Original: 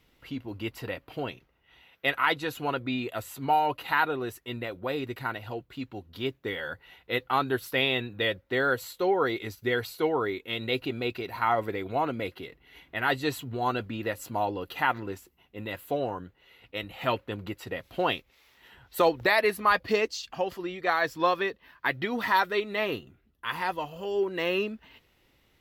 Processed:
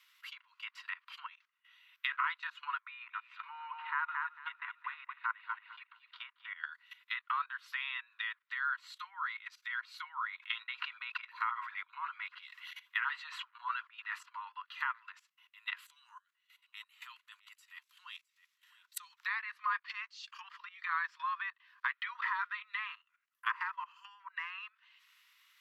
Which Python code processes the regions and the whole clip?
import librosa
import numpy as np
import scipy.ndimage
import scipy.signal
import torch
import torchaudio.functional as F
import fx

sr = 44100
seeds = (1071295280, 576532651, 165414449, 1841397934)

y = fx.chain(x, sr, fx.air_absorb(metres=350.0),
    fx.echo_feedback(ms=224, feedback_pct=39, wet_db=-7.5),
    fx.band_squash(depth_pct=40), at=(2.83, 6.56))
y = fx.chain(y, sr, fx.filter_lfo_notch(shape='sine', hz=5.2, low_hz=230.0, high_hz=2300.0, q=1.8),
    fx.sustainer(db_per_s=41.0), at=(10.33, 14.26))
y = fx.chain(y, sr, fx.level_steps(step_db=19),
    fx.peak_eq(hz=8000.0, db=9.0, octaves=1.2),
    fx.echo_single(ms=661, db=-19.0), at=(15.86, 19.18))
y = fx.chain(y, sr, fx.highpass(hz=200.0, slope=24),
    fx.peak_eq(hz=3600.0, db=-8.0, octaves=0.79),
    fx.overload_stage(gain_db=20.0), at=(22.92, 24.58))
y = fx.level_steps(y, sr, step_db=17)
y = fx.env_lowpass_down(y, sr, base_hz=1700.0, full_db=-33.0)
y = scipy.signal.sosfilt(scipy.signal.butter(16, 1000.0, 'highpass', fs=sr, output='sos'), y)
y = y * 10.0 ** (5.0 / 20.0)